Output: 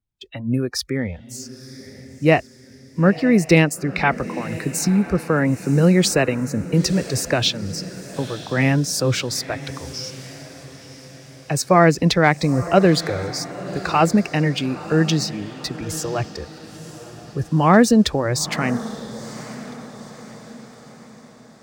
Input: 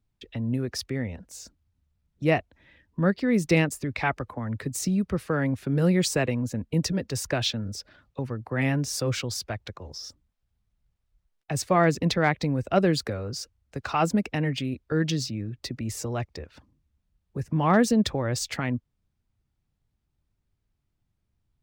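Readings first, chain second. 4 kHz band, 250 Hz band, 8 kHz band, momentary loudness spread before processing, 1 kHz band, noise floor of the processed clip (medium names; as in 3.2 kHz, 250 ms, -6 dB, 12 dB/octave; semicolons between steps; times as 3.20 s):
+7.5 dB, +7.5 dB, +7.5 dB, 15 LU, +7.5 dB, -45 dBFS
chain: spectral noise reduction 16 dB; on a send: echo that smears into a reverb 954 ms, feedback 49%, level -15 dB; on the sum: trim +7.5 dB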